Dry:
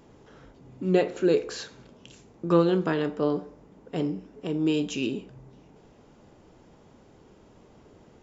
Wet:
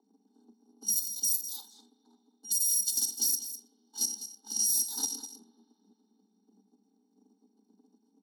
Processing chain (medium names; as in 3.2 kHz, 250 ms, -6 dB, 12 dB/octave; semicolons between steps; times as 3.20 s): bit-reversed sample order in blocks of 256 samples; level-controlled noise filter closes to 690 Hz, open at -20 dBFS; FFT filter 170 Hz 0 dB, 240 Hz +5 dB, 350 Hz -25 dB, 600 Hz +2 dB, 2.4 kHz -30 dB, 3.5 kHz +13 dB; compression 8:1, threshold -22 dBFS, peak gain reduction 17.5 dB; peak limiter -18.5 dBFS, peak gain reduction 7.5 dB; level held to a coarse grid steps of 9 dB; frequency shift +190 Hz; delay 203 ms -12 dB; spring tank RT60 3.2 s, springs 39 ms, chirp 60 ms, DRR 20 dB